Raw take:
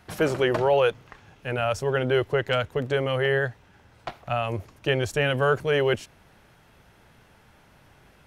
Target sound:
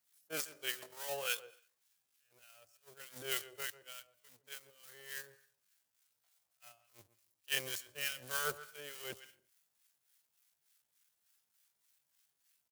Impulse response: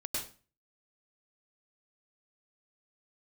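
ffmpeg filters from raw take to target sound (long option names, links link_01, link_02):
-filter_complex "[0:a]aeval=exprs='val(0)+0.5*0.0562*sgn(val(0))':channel_layout=same,bass=frequency=250:gain=8,treble=frequency=4000:gain=2,agate=range=-53dB:threshold=-14dB:ratio=16:detection=peak,aderivative,asplit=2[link_01][link_02];[link_02]adelay=87,lowpass=frequency=2300:poles=1,volume=-14dB,asplit=2[link_03][link_04];[link_04]adelay=87,lowpass=frequency=2300:poles=1,volume=0.16[link_05];[link_01][link_03][link_05]amix=inputs=3:normalize=0,asplit=2[link_06][link_07];[1:a]atrim=start_sample=2205,atrim=end_sample=6174,adelay=19[link_08];[link_07][link_08]afir=irnorm=-1:irlink=0,volume=-25dB[link_09];[link_06][link_09]amix=inputs=2:normalize=0,atempo=0.65,acrossover=split=980[link_10][link_11];[link_10]aeval=exprs='val(0)*(1-0.7/2+0.7/2*cos(2*PI*3.4*n/s))':channel_layout=same[link_12];[link_11]aeval=exprs='val(0)*(1-0.7/2-0.7/2*cos(2*PI*3.4*n/s))':channel_layout=same[link_13];[link_12][link_13]amix=inputs=2:normalize=0,volume=14.5dB"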